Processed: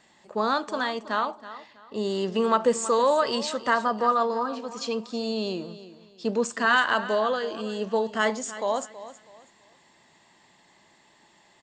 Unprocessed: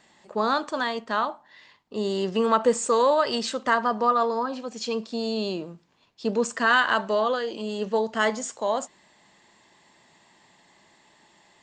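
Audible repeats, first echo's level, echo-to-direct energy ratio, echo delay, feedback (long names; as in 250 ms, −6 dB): 2, −15.0 dB, −14.5 dB, 324 ms, 29%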